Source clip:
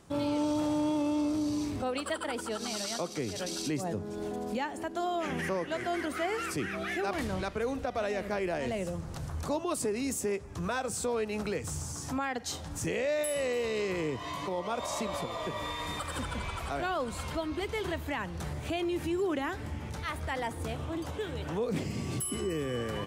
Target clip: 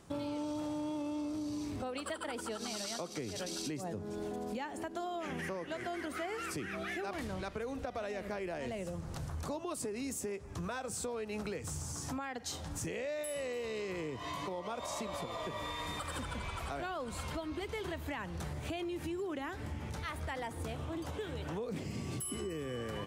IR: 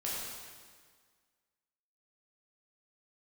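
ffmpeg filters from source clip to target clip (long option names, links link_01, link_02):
-af "acompressor=threshold=-35dB:ratio=6,volume=-1dB"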